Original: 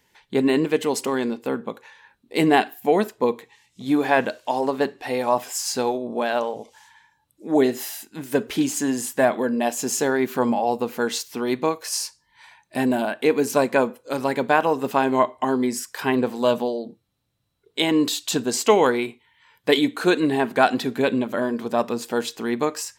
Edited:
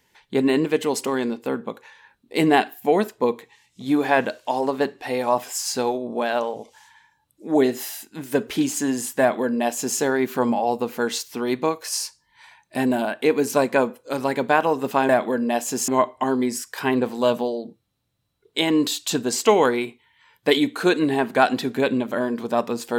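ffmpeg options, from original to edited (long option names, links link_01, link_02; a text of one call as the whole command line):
ffmpeg -i in.wav -filter_complex "[0:a]asplit=3[link_01][link_02][link_03];[link_01]atrim=end=15.092[link_04];[link_02]atrim=start=9.198:end=9.992[link_05];[link_03]atrim=start=15.088[link_06];[link_04][link_05]acrossfade=duration=0.004:curve1=hsin:curve2=hsin[link_07];[link_07][link_06]acrossfade=duration=0.004:curve1=hsin:curve2=hsin" out.wav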